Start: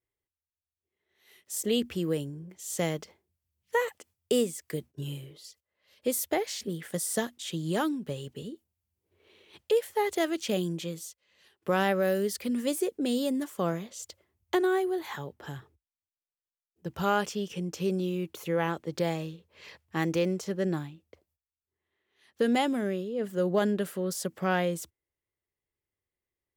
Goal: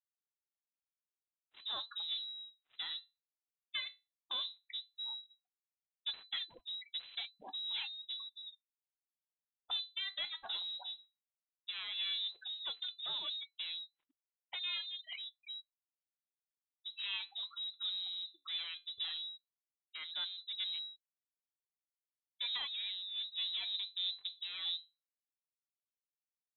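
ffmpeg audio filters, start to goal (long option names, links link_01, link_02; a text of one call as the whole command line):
ffmpeg -i in.wav -af "asetnsamples=nb_out_samples=441:pad=0,asendcmd='23.74 equalizer g 5',equalizer=frequency=300:width_type=o:width=0.85:gain=-12.5,afftfilt=real='re*gte(hypot(re,im),0.0316)':imag='im*gte(hypot(re,im),0.0316)':win_size=1024:overlap=0.75,alimiter=limit=-24dB:level=0:latency=1:release=135,aeval=exprs='clip(val(0),-1,0.0168)':channel_layout=same,flanger=delay=6:depth=9.5:regen=-64:speed=0.14:shape=sinusoidal,acrusher=bits=7:mode=log:mix=0:aa=0.000001,lowpass=frequency=3400:width_type=q:width=0.5098,lowpass=frequency=3400:width_type=q:width=0.6013,lowpass=frequency=3400:width_type=q:width=0.9,lowpass=frequency=3400:width_type=q:width=2.563,afreqshift=-4000" out.wav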